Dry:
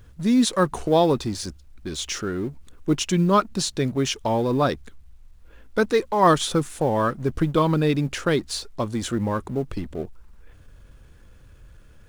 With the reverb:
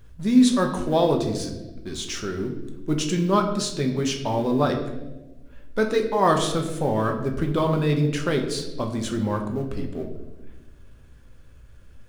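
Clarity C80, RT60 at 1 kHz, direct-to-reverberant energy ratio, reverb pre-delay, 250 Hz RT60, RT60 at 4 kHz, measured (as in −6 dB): 10.0 dB, 0.90 s, 2.5 dB, 5 ms, 1.8 s, 0.85 s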